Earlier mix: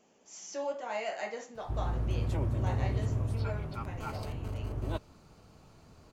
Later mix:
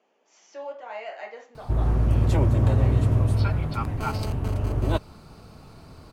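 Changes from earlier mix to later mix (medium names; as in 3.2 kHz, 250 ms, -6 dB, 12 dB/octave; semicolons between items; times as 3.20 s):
speech: add band-pass 400–3200 Hz; background +11.0 dB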